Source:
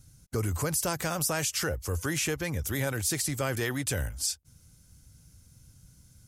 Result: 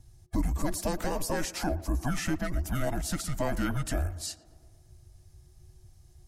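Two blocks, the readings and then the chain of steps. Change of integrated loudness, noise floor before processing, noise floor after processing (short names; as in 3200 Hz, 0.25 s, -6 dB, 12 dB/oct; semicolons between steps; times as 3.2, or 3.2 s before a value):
-2.0 dB, -59 dBFS, -58 dBFS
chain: band inversion scrambler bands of 500 Hz; high shelf 2100 Hz -11 dB; frequency shift -370 Hz; on a send: tape echo 0.116 s, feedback 75%, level -16.5 dB, low-pass 1700 Hz; on the sum: gain +3 dB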